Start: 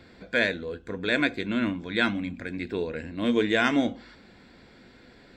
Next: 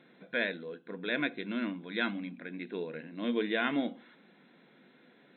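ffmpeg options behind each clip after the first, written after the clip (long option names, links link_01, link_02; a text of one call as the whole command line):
ffmpeg -i in.wav -af "afftfilt=real='re*between(b*sr/4096,130,4100)':imag='im*between(b*sr/4096,130,4100)':win_size=4096:overlap=0.75,volume=-7.5dB" out.wav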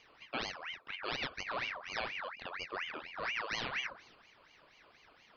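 ffmpeg -i in.wav -af "acompressor=threshold=-33dB:ratio=4,aeval=exprs='val(0)*sin(2*PI*1700*n/s+1700*0.55/4.2*sin(2*PI*4.2*n/s))':channel_layout=same,volume=1dB" out.wav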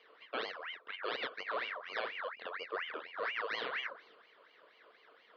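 ffmpeg -i in.wav -af "highpass=420,equalizer=frequency=460:width_type=q:width=4:gain=8,equalizer=frequency=830:width_type=q:width=4:gain=-7,equalizer=frequency=2500:width_type=q:width=4:gain=-9,lowpass=frequency=3600:width=0.5412,lowpass=frequency=3600:width=1.3066,volume=2.5dB" out.wav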